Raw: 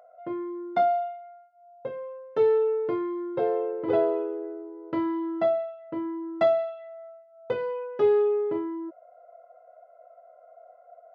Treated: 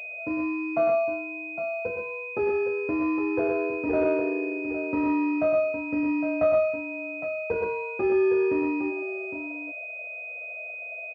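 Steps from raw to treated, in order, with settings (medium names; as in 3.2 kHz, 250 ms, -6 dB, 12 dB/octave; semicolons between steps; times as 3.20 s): band-stop 430 Hz, Q 12; in parallel at +2.5 dB: peak limiter -24 dBFS, peak gain reduction 11 dB; on the sum: multi-tap echo 104/121/810 ms -8/-6.5/-9 dB; frequency shift -34 Hz; class-D stage that switches slowly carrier 2.5 kHz; trim -4.5 dB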